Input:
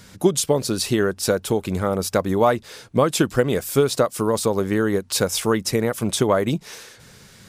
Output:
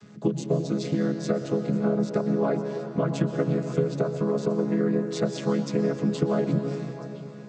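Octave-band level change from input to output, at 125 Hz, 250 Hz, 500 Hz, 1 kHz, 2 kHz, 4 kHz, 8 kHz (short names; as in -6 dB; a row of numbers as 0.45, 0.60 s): -1.5, -2.0, -6.0, -11.0, -11.5, -15.0, -19.0 dB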